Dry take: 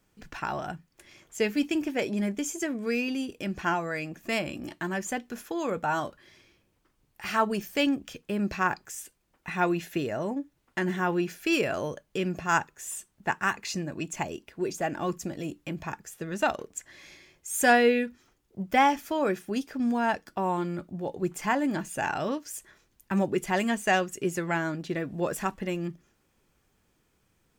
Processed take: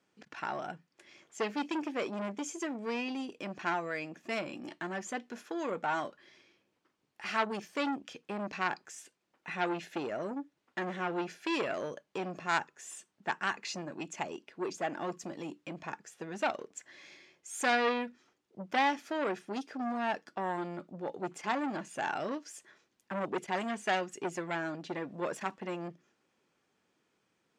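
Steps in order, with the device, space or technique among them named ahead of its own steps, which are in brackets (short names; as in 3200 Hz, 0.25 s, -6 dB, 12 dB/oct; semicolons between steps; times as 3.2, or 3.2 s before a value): public-address speaker with an overloaded transformer (core saturation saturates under 2000 Hz; BPF 220–6100 Hz); gain -3 dB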